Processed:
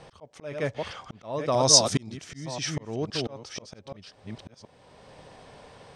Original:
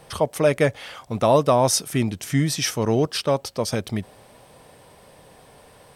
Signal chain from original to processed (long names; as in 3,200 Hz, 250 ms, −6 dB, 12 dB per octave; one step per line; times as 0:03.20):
delay that plays each chunk backwards 517 ms, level −7 dB
low-pass filter 6,900 Hz 24 dB per octave
volume swells 724 ms
0:01.52–0:02.17: high shelf with overshoot 3,400 Hz +8.5 dB, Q 1.5